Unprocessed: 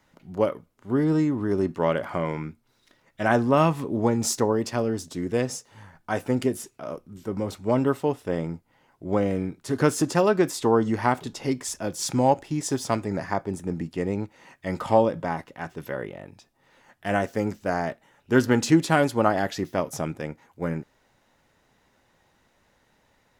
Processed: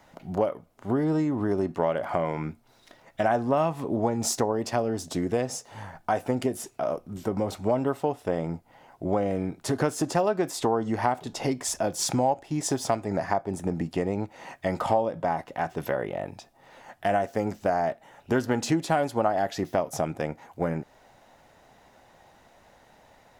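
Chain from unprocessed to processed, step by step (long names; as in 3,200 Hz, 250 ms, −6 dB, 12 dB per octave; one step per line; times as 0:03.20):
parametric band 710 Hz +9.5 dB 0.66 octaves
downward compressor 3 to 1, threshold −31 dBFS, peak gain reduction 17 dB
level +5.5 dB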